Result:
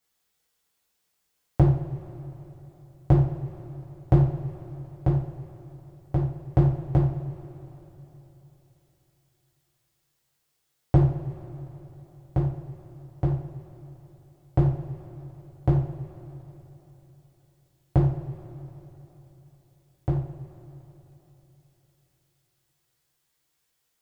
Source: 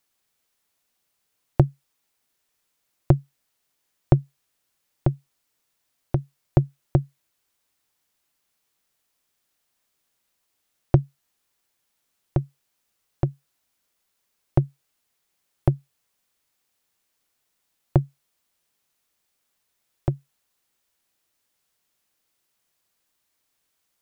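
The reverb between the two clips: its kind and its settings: two-slope reverb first 0.49 s, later 3.7 s, from -17 dB, DRR -7 dB; gain -8 dB

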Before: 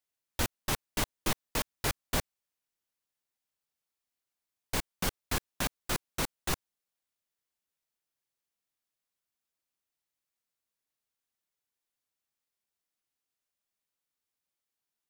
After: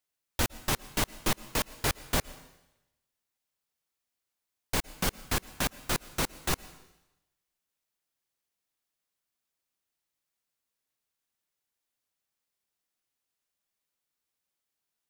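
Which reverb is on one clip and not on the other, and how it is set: plate-style reverb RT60 0.95 s, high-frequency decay 1×, pre-delay 0.1 s, DRR 18.5 dB; gain +2.5 dB

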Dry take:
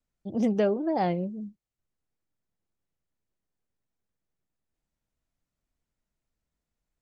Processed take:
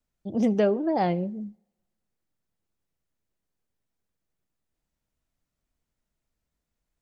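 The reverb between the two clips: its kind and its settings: two-slope reverb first 0.59 s, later 1.5 s, from -22 dB, DRR 20 dB; gain +2 dB

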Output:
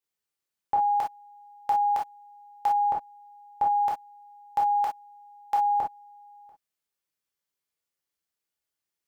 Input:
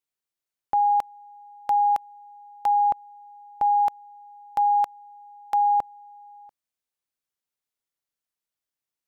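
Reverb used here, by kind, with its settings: non-linear reverb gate 80 ms flat, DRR -3 dB; gain -3 dB

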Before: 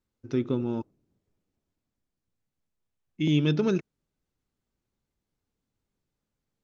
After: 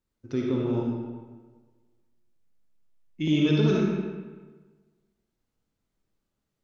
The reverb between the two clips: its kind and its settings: digital reverb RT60 1.4 s, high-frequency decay 0.7×, pre-delay 15 ms, DRR -3 dB; gain -2 dB

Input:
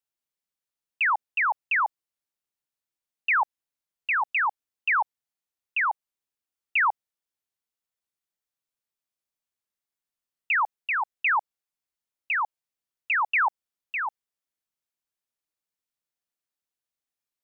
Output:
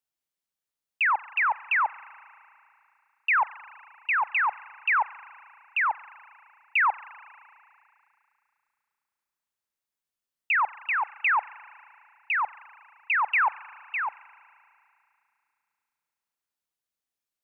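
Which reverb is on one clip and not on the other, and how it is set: spring tank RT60 2.7 s, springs 34 ms, chirp 40 ms, DRR 18.5 dB

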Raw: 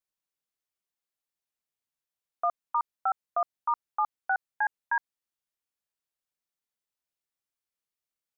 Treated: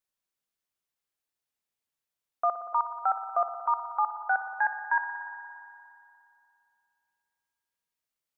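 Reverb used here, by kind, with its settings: spring tank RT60 2.6 s, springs 58 ms, chirp 65 ms, DRR 7.5 dB; gain +1.5 dB

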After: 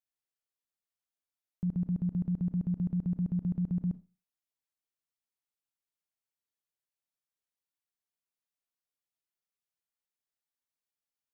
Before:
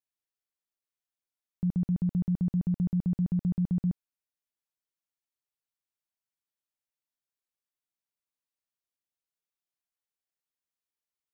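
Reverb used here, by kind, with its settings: Schroeder reverb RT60 0.3 s, combs from 26 ms, DRR 13 dB; gain -3.5 dB

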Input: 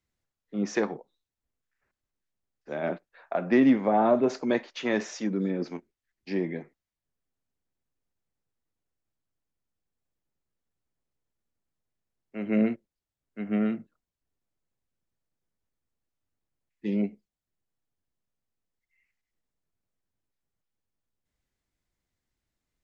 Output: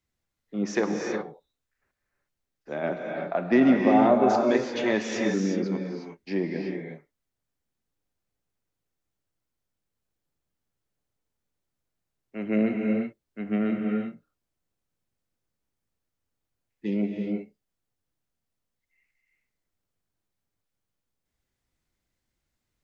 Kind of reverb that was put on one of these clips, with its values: non-linear reverb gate 0.39 s rising, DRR 1.5 dB; gain +1 dB

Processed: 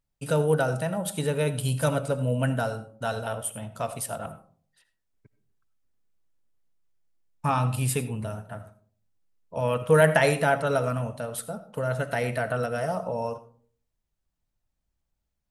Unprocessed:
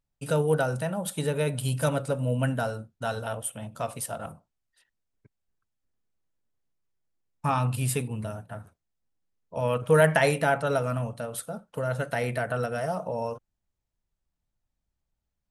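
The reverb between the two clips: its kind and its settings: digital reverb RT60 0.49 s, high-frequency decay 0.35×, pre-delay 40 ms, DRR 13.5 dB; gain +1 dB

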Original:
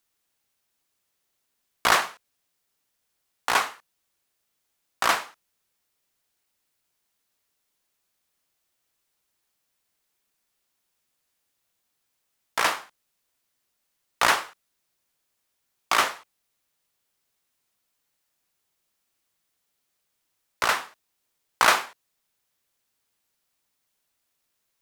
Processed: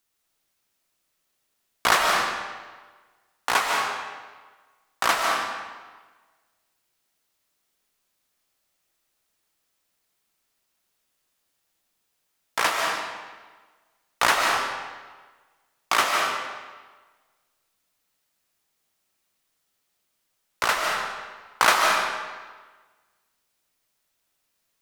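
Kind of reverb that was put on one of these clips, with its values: digital reverb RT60 1.4 s, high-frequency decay 0.85×, pre-delay 0.11 s, DRR 0.5 dB

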